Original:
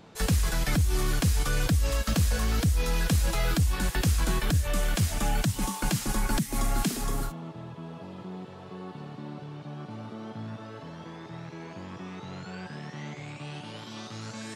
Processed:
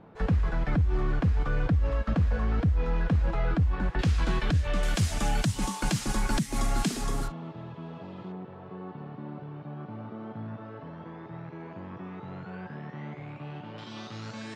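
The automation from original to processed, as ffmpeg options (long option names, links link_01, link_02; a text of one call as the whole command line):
ffmpeg -i in.wav -af "asetnsamples=nb_out_samples=441:pad=0,asendcmd='3.99 lowpass f 3600;4.83 lowpass f 8500;7.28 lowpass f 3800;8.32 lowpass f 1800;13.78 lowpass f 4500',lowpass=1500" out.wav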